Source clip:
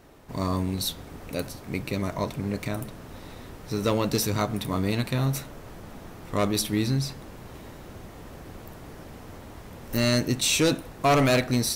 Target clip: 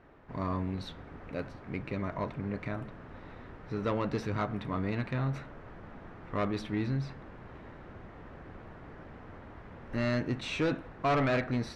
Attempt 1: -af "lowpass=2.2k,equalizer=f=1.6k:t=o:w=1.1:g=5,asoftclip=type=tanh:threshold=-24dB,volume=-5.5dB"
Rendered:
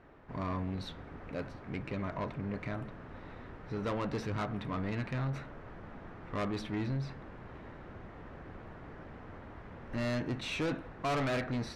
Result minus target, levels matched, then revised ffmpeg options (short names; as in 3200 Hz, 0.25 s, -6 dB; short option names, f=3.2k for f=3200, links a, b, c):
soft clip: distortion +9 dB
-af "lowpass=2.2k,equalizer=f=1.6k:t=o:w=1.1:g=5,asoftclip=type=tanh:threshold=-16.5dB,volume=-5.5dB"